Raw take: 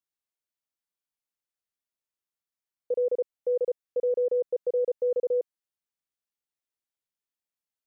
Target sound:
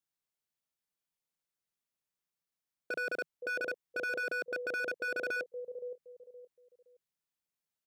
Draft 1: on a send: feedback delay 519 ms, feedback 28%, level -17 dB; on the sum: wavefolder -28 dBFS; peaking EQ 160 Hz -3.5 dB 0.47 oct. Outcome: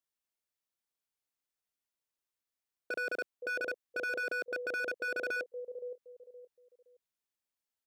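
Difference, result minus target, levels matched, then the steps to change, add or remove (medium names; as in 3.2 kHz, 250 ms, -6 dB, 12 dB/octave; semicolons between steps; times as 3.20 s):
125 Hz band -4.5 dB
change: peaking EQ 160 Hz +8 dB 0.47 oct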